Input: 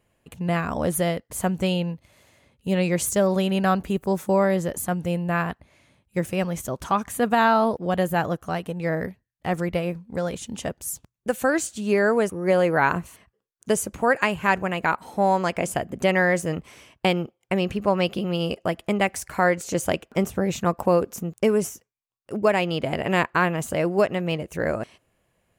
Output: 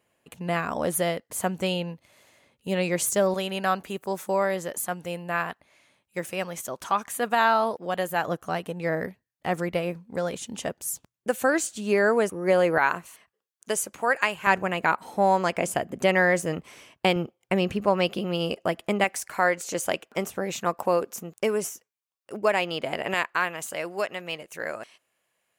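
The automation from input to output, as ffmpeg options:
-af "asetnsamples=n=441:p=0,asendcmd='3.34 highpass f 690;8.28 highpass f 250;12.78 highpass f 830;14.47 highpass f 200;17.16 highpass f 98;17.84 highpass f 220;19.04 highpass f 580;23.14 highpass f 1400',highpass=f=330:p=1"

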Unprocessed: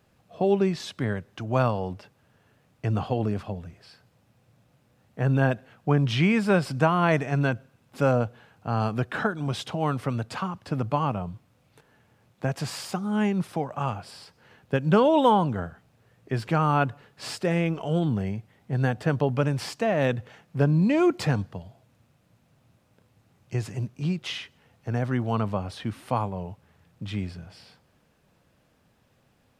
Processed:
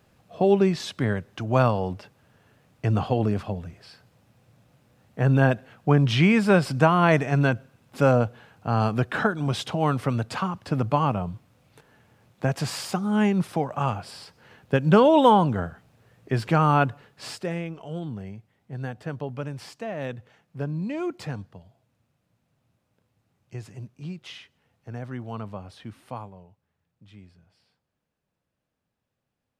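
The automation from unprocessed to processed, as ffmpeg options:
-af "volume=3dB,afade=t=out:st=16.72:d=0.96:silence=0.266073,afade=t=out:st=26.06:d=0.43:silence=0.354813"

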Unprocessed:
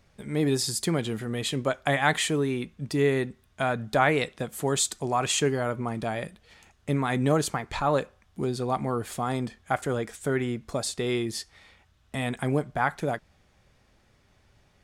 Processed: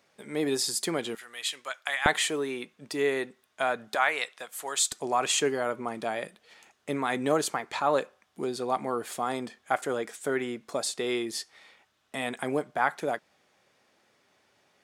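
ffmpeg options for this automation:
-af "asetnsamples=n=441:p=0,asendcmd='1.15 highpass f 1400;2.06 highpass f 410;3.95 highpass f 890;4.92 highpass f 310',highpass=330"

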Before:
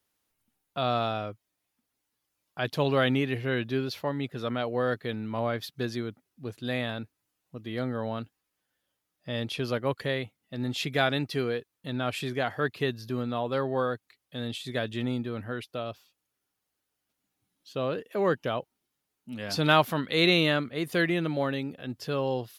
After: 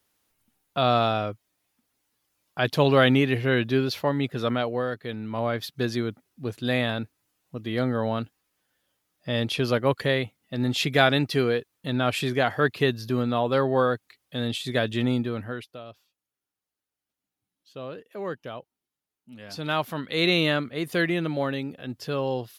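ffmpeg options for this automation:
-af "volume=23dB,afade=t=out:st=4.48:d=0.43:silence=0.375837,afade=t=in:st=4.91:d=1.17:silence=0.375837,afade=t=out:st=15.19:d=0.6:silence=0.223872,afade=t=in:st=19.63:d=0.84:silence=0.375837"

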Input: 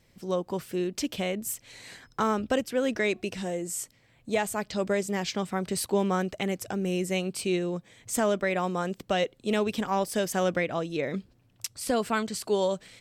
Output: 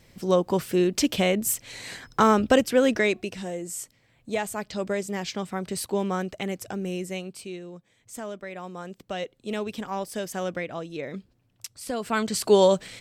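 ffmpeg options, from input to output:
-af "volume=26.5dB,afade=t=out:st=2.74:d=0.57:silence=0.375837,afade=t=out:st=6.76:d=0.78:silence=0.334965,afade=t=in:st=8.51:d=1.02:silence=0.473151,afade=t=in:st=12:d=0.5:silence=0.237137"

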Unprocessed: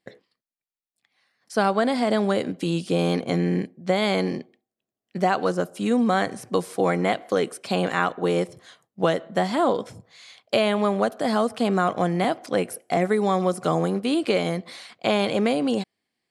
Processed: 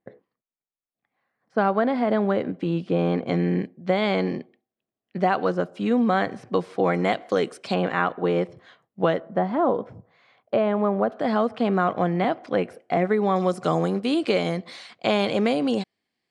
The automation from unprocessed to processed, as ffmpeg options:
-af "asetnsamples=n=441:p=0,asendcmd='1.58 lowpass f 2000;3.26 lowpass f 3300;6.94 lowpass f 6100;7.74 lowpass f 2700;9.2 lowpass f 1300;11.09 lowpass f 2800;13.36 lowpass f 6900',lowpass=1.2k"

